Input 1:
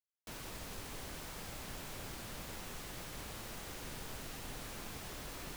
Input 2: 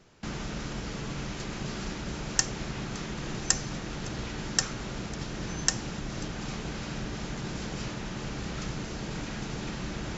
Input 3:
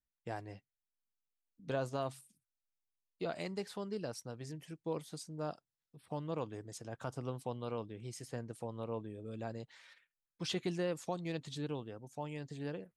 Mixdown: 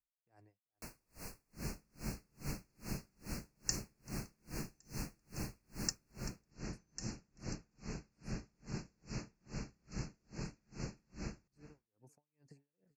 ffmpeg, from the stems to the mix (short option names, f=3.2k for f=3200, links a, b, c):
-filter_complex "[0:a]adelay=550,volume=1dB,asplit=2[a][b];[b]volume=-6.5dB[c];[1:a]adelay=1300,volume=-4dB,asplit=2[d][e];[e]volume=-19.5dB[f];[2:a]acompressor=threshold=-48dB:ratio=12,volume=-4dB,asplit=2[g][h];[h]volume=-22dB[i];[c][f][i]amix=inputs=3:normalize=0,aecho=0:1:388:1[j];[a][d][g][j]amix=inputs=4:normalize=0,acrossover=split=380|3000[k][l][m];[l]acompressor=threshold=-59dB:ratio=1.5[n];[k][n][m]amix=inputs=3:normalize=0,asuperstop=centerf=3400:order=12:qfactor=2.3,aeval=exprs='val(0)*pow(10,-39*(0.5-0.5*cos(2*PI*2.4*n/s))/20)':c=same"